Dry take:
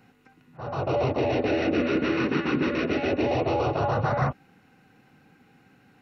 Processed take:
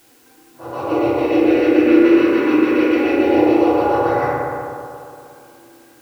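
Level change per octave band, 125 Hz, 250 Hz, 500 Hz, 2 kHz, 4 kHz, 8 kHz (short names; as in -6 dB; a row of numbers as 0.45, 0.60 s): -4.0 dB, +13.0 dB, +10.0 dB, +7.0 dB, +3.5 dB, n/a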